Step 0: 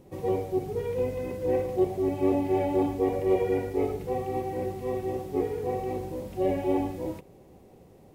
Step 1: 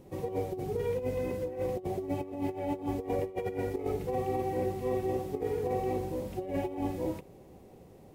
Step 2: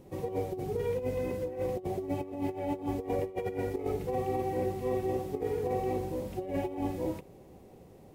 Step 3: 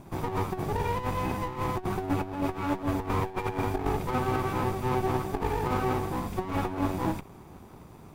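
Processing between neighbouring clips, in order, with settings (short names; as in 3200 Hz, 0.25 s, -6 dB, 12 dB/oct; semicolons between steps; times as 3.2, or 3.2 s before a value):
negative-ratio compressor -29 dBFS, ratio -0.5; gain -2.5 dB
nothing audible
minimum comb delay 0.83 ms; gain +6.5 dB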